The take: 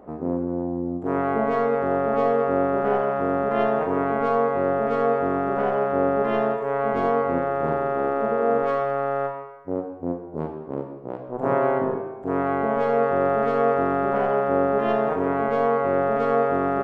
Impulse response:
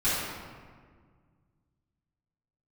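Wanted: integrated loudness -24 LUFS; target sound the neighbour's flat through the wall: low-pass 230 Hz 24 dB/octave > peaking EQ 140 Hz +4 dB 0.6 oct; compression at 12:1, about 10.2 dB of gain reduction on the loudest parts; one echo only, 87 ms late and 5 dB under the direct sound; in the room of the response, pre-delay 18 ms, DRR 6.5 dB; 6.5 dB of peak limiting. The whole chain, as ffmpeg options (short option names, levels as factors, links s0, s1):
-filter_complex "[0:a]acompressor=threshold=0.0447:ratio=12,alimiter=limit=0.0631:level=0:latency=1,aecho=1:1:87:0.562,asplit=2[s0][s1];[1:a]atrim=start_sample=2205,adelay=18[s2];[s1][s2]afir=irnorm=-1:irlink=0,volume=0.112[s3];[s0][s3]amix=inputs=2:normalize=0,lowpass=f=230:w=0.5412,lowpass=f=230:w=1.3066,equalizer=f=140:t=o:w=0.6:g=4,volume=7.08"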